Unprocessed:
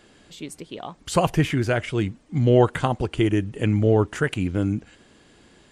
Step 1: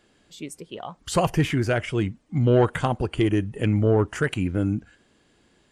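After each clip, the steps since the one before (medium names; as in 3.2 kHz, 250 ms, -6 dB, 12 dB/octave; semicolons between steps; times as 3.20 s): spectral noise reduction 8 dB; saturation -9.5 dBFS, distortion -19 dB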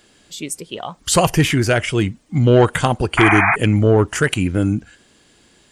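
treble shelf 3.1 kHz +9.5 dB; painted sound noise, 3.17–3.56 s, 650–2500 Hz -21 dBFS; trim +6 dB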